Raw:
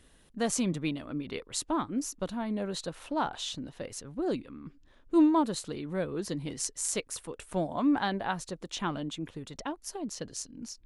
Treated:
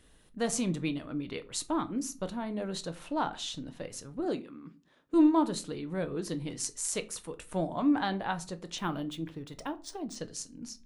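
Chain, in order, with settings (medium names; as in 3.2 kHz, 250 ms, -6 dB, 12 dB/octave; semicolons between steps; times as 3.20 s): 4.20–5.14 s: high-pass 180 Hz 12 dB/octave; simulated room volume 170 m³, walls furnished, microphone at 0.5 m; 8.78–10.16 s: decimation joined by straight lines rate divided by 3×; trim -1.5 dB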